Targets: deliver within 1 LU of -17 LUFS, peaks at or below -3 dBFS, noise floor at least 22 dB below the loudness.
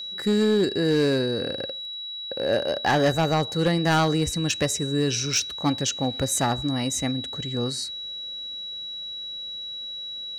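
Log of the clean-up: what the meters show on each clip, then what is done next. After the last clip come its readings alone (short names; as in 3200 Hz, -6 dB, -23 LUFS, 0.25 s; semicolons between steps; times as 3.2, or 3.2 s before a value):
clipped 0.8%; flat tops at -15.0 dBFS; steady tone 3900 Hz; tone level -32 dBFS; loudness -25.0 LUFS; peak -15.0 dBFS; loudness target -17.0 LUFS
-> clip repair -15 dBFS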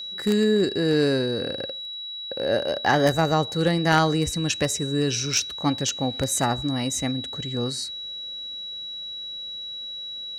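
clipped 0.0%; steady tone 3900 Hz; tone level -32 dBFS
-> notch 3900 Hz, Q 30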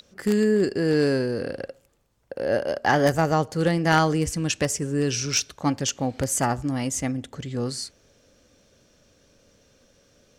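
steady tone none; loudness -24.0 LUFS; peak -5.5 dBFS; loudness target -17.0 LUFS
-> gain +7 dB; limiter -3 dBFS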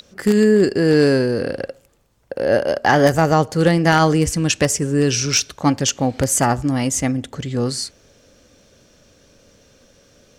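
loudness -17.5 LUFS; peak -3.0 dBFS; noise floor -54 dBFS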